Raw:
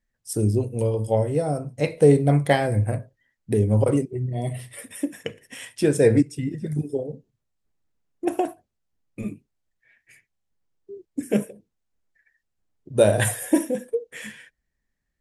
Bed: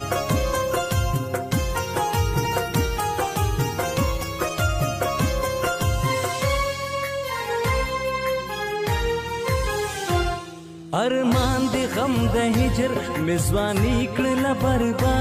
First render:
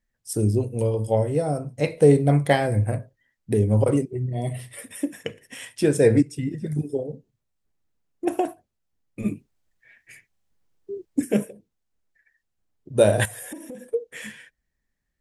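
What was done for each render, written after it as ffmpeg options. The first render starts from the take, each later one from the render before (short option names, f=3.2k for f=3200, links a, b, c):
-filter_complex "[0:a]asplit=3[a][b][c];[a]afade=t=out:st=9.24:d=0.02[d];[b]acontrast=49,afade=t=in:st=9.24:d=0.02,afade=t=out:st=11.24:d=0.02[e];[c]afade=t=in:st=11.24:d=0.02[f];[d][e][f]amix=inputs=3:normalize=0,asettb=1/sr,asplit=3[g][h][i];[g]atrim=end=13.254[j];[h]atrim=start=13.25:end=13.94,asetpts=PTS-STARTPTS,afade=t=in:d=0.004:c=qsin,afade=t=out:st=0.686:d=0.004:c=qsin,acompressor=threshold=-33dB:ratio=16:attack=3.2:release=140:knee=1:detection=peak[k];[i]atrim=start=13.936[l];[j][k]acrossfade=d=0.004:c1=hsin:c2=qsin[m];[m][l]acrossfade=d=0.004:c1=qsin:c2=hsin"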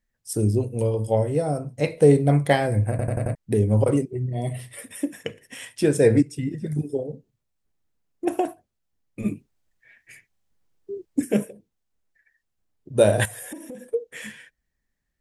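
-filter_complex "[0:a]asplit=6[a][b][c][d][e][f];[a]atrim=end=2.992[g];[b]atrim=start=2.898:end=2.992[h];[c]atrim=start=2.898:end=2.992[i];[d]atrim=start=2.898:end=2.992[j];[e]atrim=start=2.898:end=2.992[k];[f]atrim=start=3.348[l];[g][h]acrossfade=d=0.004:c1=hsin:c2=hsin[m];[m][i]acrossfade=d=0.004:c1=hsin:c2=hsin[n];[n][j]acrossfade=d=0.004:c1=hsin:c2=hsin[o];[o][k]acrossfade=d=0.004:c1=hsin:c2=hsin[p];[p][l]acrossfade=d=0.004:c1=hsin:c2=hsin"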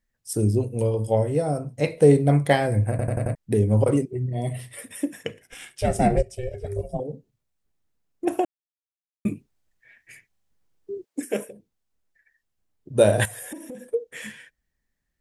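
-filter_complex "[0:a]asettb=1/sr,asplit=3[a][b][c];[a]atrim=end=5.424[d];[b]atrim=start=5.42:end=7,asetpts=PTS-STARTPTS,afade=t=in:d=0.004:c=qsin,afade=t=out:st=1.576:d=0.004:c=qsin,aeval=exprs='val(0)*sin(2*PI*250*n/s)':c=same[e];[c]atrim=start=6.996[f];[d][e]acrossfade=d=0.004:c1=hsin:c2=qsin[g];[g][f]acrossfade=d=0.004:c1=qsin:c2=hsin,asettb=1/sr,asplit=3[h][i][j];[h]atrim=end=11.044[k];[i]atrim=start=11.04:end=11.49,asetpts=PTS-STARTPTS,afade=t=in:d=0.004:c=qsin,afade=t=out:st=0.446:d=0.004:c=qsin,highpass=400[l];[j]atrim=start=11.486[m];[k][l]acrossfade=d=0.004:c1=hsin:c2=qsin[n];[n][m]acrossfade=d=0.004:c1=qsin:c2=hsin,asplit=3[o][p][q];[o]atrim=end=8.45,asetpts=PTS-STARTPTS,afade=t=out:st=8.446:d=0.004:c=hsin[r];[p]atrim=start=8.45:end=9.25,asetpts=PTS-STARTPTS,volume=0[s];[q]atrim=start=9.25,asetpts=PTS-STARTPTS,afade=t=in:d=0.004:c=hsin[t];[r][s][t]concat=n=3:v=0:a=1"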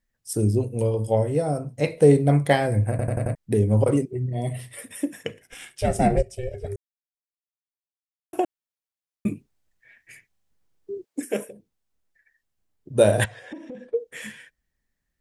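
-filter_complex "[0:a]asettb=1/sr,asplit=3[a][b][c];[a]atrim=end=13.244[d];[b]atrim=start=13.24:end=13.99,asetpts=PTS-STARTPTS,afade=t=in:d=0.004:c=qsin,afade=t=out:st=0.746:d=0.004:c=qsin,lowpass=f=4.6k:w=0.5412,lowpass=f=4.6k:w=1.3066[e];[c]atrim=start=13.986[f];[d][e]acrossfade=d=0.004:c1=hsin:c2=qsin[g];[g][f]acrossfade=d=0.004:c1=qsin:c2=hsin,asplit=3[h][i][j];[h]atrim=end=6.76,asetpts=PTS-STARTPTS,afade=t=out:st=6.756:d=0.004:c=hsin[k];[i]atrim=start=6.76:end=8.33,asetpts=PTS-STARTPTS,volume=0[l];[j]atrim=start=8.33,asetpts=PTS-STARTPTS,afade=t=in:d=0.004:c=hsin[m];[k][l][m]concat=n=3:v=0:a=1"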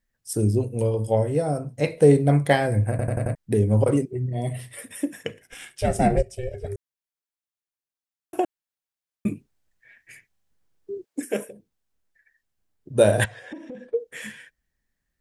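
-af "equalizer=f=1.6k:t=o:w=0.24:g=2.5"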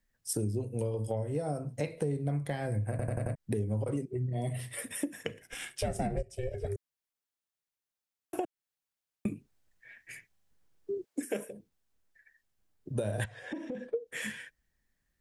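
-filter_complex "[0:a]acrossover=split=190[a][b];[b]alimiter=limit=-14.5dB:level=0:latency=1:release=363[c];[a][c]amix=inputs=2:normalize=0,acompressor=threshold=-31dB:ratio=4"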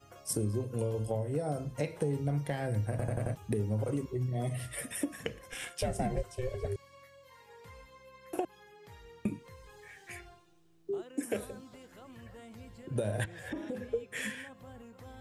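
-filter_complex "[1:a]volume=-30dB[a];[0:a][a]amix=inputs=2:normalize=0"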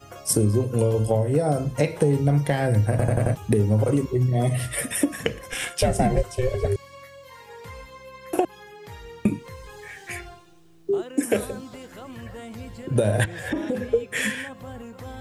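-af "volume=12dB"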